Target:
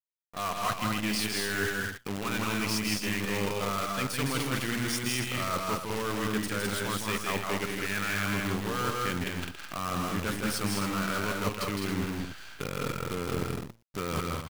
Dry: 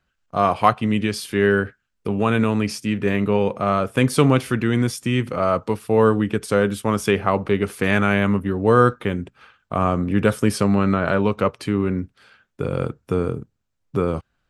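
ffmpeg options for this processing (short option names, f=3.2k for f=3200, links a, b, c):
-filter_complex "[0:a]asplit=2[a][b];[b]highpass=f=720:p=1,volume=14dB,asoftclip=type=tanh:threshold=-1dB[c];[a][c]amix=inputs=2:normalize=0,lowpass=f=5.4k:p=1,volume=-6dB,equalizer=f=600:t=o:w=2.2:g=-11.5,areverse,acompressor=threshold=-34dB:ratio=10,areverse,bandreject=f=57.58:t=h:w=4,bandreject=f=115.16:t=h:w=4,acrusher=bits=7:dc=4:mix=0:aa=0.000001,asplit=2[d][e];[e]aecho=0:1:160.3|207|277:0.631|0.631|0.355[f];[d][f]amix=inputs=2:normalize=0,volume=4dB"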